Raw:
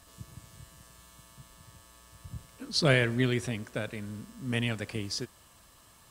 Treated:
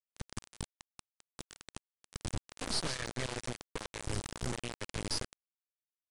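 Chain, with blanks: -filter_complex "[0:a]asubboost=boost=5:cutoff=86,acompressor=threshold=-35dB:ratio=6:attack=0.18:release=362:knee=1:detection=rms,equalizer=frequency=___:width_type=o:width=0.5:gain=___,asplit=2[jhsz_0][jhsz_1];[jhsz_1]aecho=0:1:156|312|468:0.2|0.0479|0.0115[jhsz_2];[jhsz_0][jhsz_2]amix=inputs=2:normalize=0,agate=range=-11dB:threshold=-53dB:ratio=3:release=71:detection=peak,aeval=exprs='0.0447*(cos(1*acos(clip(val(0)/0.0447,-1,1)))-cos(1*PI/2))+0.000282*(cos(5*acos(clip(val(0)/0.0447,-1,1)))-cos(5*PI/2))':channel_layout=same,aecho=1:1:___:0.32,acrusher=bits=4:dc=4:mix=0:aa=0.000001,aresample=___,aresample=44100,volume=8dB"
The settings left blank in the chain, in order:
4900, 5, 2.3, 22050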